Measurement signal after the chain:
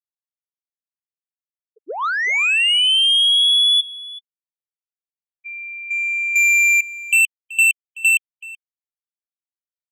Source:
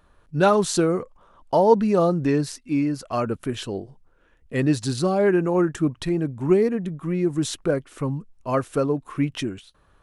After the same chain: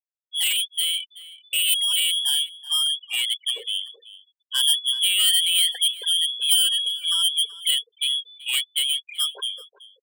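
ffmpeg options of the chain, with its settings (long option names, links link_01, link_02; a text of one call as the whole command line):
ffmpeg -i in.wav -filter_complex "[0:a]acrossover=split=1700[link_01][link_02];[link_02]acompressor=threshold=-40dB:ratio=8[link_03];[link_01][link_03]amix=inputs=2:normalize=0,lowpass=frequency=3000:width_type=q:width=0.5098,lowpass=frequency=3000:width_type=q:width=0.6013,lowpass=frequency=3000:width_type=q:width=0.9,lowpass=frequency=3000:width_type=q:width=2.563,afreqshift=-3500,highpass=frequency=440:width_type=q:width=4.4,afftfilt=real='re*gte(hypot(re,im),0.0398)':imag='im*gte(hypot(re,im),0.0398)':win_size=1024:overlap=0.75,equalizer=frequency=1200:width=2.1:gain=9,asoftclip=type=tanh:threshold=-20dB,aemphasis=mode=production:type=75fm,asplit=2[link_04][link_05];[link_05]adelay=379,volume=-15dB,highshelf=frequency=4000:gain=-8.53[link_06];[link_04][link_06]amix=inputs=2:normalize=0,dynaudnorm=framelen=180:gausssize=21:maxgain=14.5dB,volume=-5dB" out.wav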